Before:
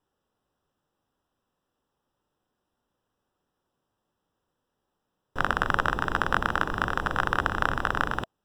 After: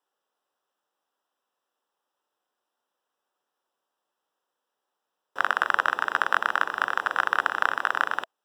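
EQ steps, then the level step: high-pass 560 Hz 12 dB/octave; dynamic bell 1.8 kHz, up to +4 dB, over -37 dBFS, Q 1.2; 0.0 dB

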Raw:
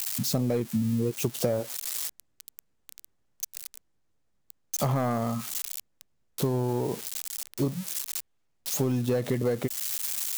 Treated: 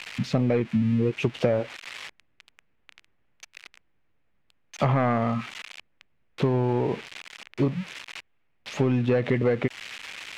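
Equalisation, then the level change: resonant low-pass 2.4 kHz, resonance Q 2.1; +3.5 dB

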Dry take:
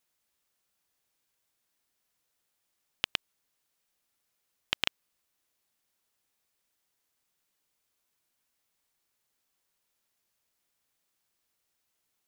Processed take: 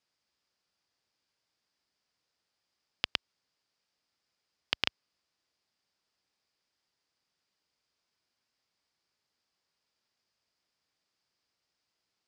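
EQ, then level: high-pass 54 Hz; distance through air 93 m; peaking EQ 4.9 kHz +10.5 dB 0.31 oct; 0.0 dB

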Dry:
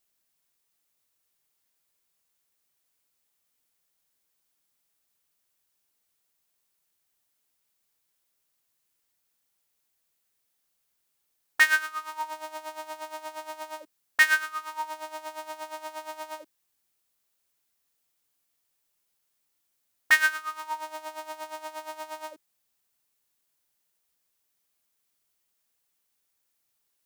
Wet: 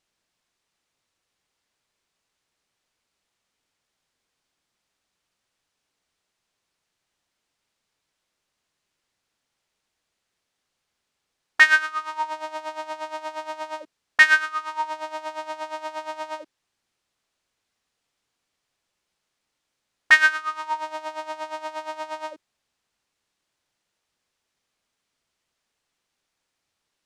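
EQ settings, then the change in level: distance through air 88 m; +6.5 dB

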